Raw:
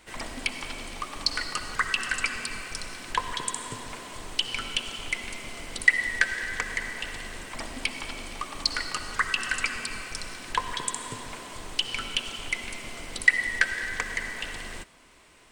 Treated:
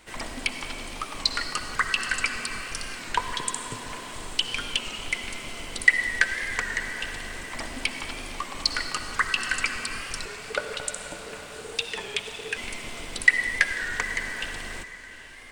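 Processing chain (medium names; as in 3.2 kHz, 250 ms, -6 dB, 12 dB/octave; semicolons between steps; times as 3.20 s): 10.26–12.57 s: ring modulator 440 Hz; echo that smears into a reverb 819 ms, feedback 44%, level -15 dB; warped record 33 1/3 rpm, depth 100 cents; trim +1.5 dB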